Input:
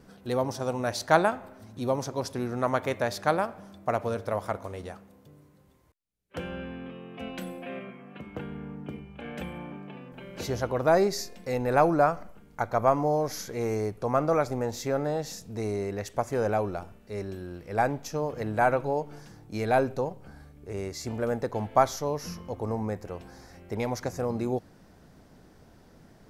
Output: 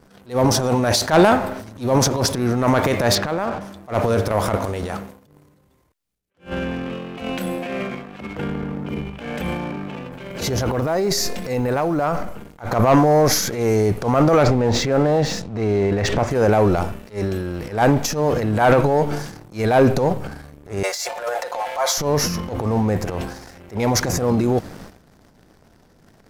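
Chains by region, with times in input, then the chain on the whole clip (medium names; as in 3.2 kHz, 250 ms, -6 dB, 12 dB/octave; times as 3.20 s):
3.15–3.61 s: low-pass 3.9 kHz + compression 2.5:1, threshold -34 dBFS
10.31–12.19 s: companding laws mixed up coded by mu + compression 12:1, threshold -28 dBFS
14.43–16.31 s: low-pass 3.4 kHz + swell ahead of each attack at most 89 dB/s
20.83–21.98 s: steep high-pass 520 Hz 48 dB/octave + comb 5.6 ms, depth 84% + compression 2:1, threshold -33 dBFS
whole clip: transient shaper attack -11 dB, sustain +9 dB; waveshaping leveller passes 2; attacks held to a fixed rise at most 250 dB/s; trim +4.5 dB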